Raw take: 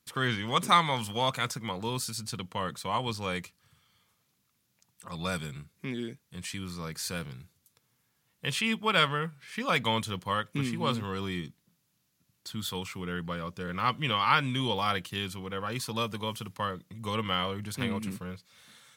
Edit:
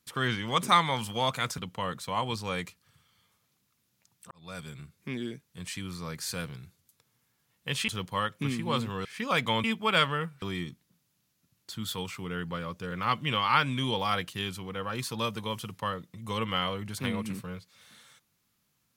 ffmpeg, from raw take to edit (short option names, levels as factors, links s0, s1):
-filter_complex "[0:a]asplit=7[s0][s1][s2][s3][s4][s5][s6];[s0]atrim=end=1.582[s7];[s1]atrim=start=2.348:end=5.08,asetpts=PTS-STARTPTS,afade=t=out:st=2.728:d=0.004:c=hsin[s8];[s2]atrim=start=5.08:end=8.652,asetpts=PTS-STARTPTS,afade=t=in:d=0.66[s9];[s3]atrim=start=10.018:end=11.192[s10];[s4]atrim=start=9.428:end=10.022[s11];[s5]atrim=start=8.648:end=9.432[s12];[s6]atrim=start=11.188[s13];[s8][s9]concat=n=2:v=0:a=1[s14];[s7][s14]acrossfade=d=0.004:c1=hsin:c2=hsin[s15];[s15][s10]acrossfade=d=0.004:c1=hsin:c2=hsin[s16];[s16][s11]acrossfade=d=0.004:c1=hsin:c2=hsin[s17];[s17][s12]acrossfade=d=0.004:c1=hsin:c2=hsin[s18];[s18][s13]acrossfade=d=0.004:c1=hsin:c2=hsin"